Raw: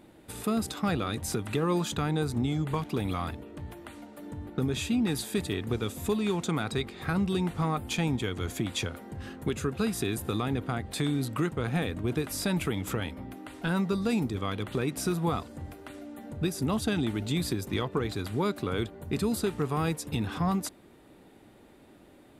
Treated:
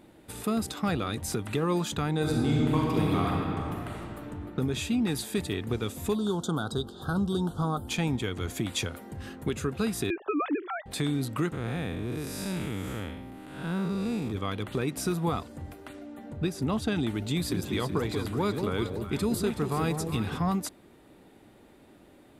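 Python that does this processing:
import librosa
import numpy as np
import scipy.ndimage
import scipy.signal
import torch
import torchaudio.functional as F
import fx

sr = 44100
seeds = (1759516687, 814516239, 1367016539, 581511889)

y = fx.reverb_throw(x, sr, start_s=2.15, length_s=1.84, rt60_s=2.8, drr_db=-3.0)
y = fx.ellip_bandstop(y, sr, low_hz=1500.0, high_hz=3200.0, order=3, stop_db=60, at=(6.15, 7.88))
y = fx.high_shelf(y, sr, hz=5900.0, db=5.0, at=(8.57, 9.35))
y = fx.sine_speech(y, sr, at=(10.1, 10.86))
y = fx.spec_blur(y, sr, span_ms=205.0, at=(11.52, 14.31), fade=0.02)
y = fx.high_shelf(y, sr, hz=7500.0, db=-10.0, at=(15.93, 16.96))
y = fx.echo_alternate(y, sr, ms=187, hz=860.0, feedback_pct=63, wet_db=-5.0, at=(17.49, 20.35), fade=0.02)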